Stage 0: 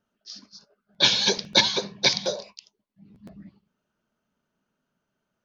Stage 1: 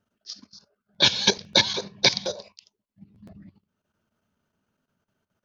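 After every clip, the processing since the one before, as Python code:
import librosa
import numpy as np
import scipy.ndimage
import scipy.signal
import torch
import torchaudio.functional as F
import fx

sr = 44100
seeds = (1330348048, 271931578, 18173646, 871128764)

y = fx.level_steps(x, sr, step_db=10)
y = fx.transient(y, sr, attack_db=2, sustain_db=-3)
y = fx.peak_eq(y, sr, hz=91.0, db=11.5, octaves=0.55)
y = y * 10.0 ** (3.0 / 20.0)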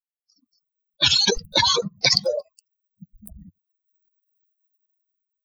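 y = fx.bin_expand(x, sr, power=3.0)
y = fx.sustainer(y, sr, db_per_s=20.0)
y = y * 10.0 ** (3.0 / 20.0)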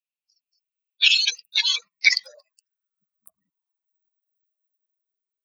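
y = fx.filter_sweep_highpass(x, sr, from_hz=2600.0, to_hz=370.0, start_s=1.65, end_s=5.43, q=7.6)
y = y * 10.0 ** (-6.5 / 20.0)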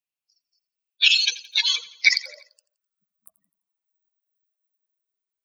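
y = fx.echo_feedback(x, sr, ms=85, feedback_pct=49, wet_db=-18.5)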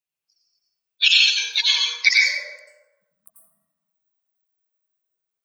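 y = fx.rev_plate(x, sr, seeds[0], rt60_s=1.1, hf_ratio=0.4, predelay_ms=80, drr_db=-3.5)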